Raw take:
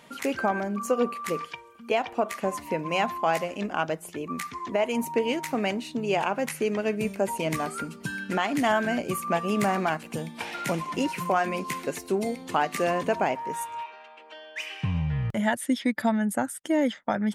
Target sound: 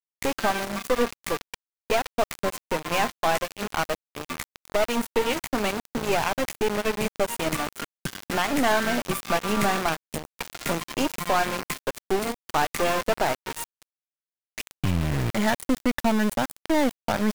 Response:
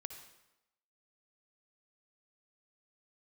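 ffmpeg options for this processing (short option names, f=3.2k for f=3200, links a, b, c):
-af "aeval=exprs='val(0)*gte(abs(val(0)),0.0398)':c=same,aeval=exprs='0.251*(cos(1*acos(clip(val(0)/0.251,-1,1)))-cos(1*PI/2))+0.02*(cos(5*acos(clip(val(0)/0.251,-1,1)))-cos(5*PI/2))+0.0398*(cos(6*acos(clip(val(0)/0.251,-1,1)))-cos(6*PI/2))':c=same"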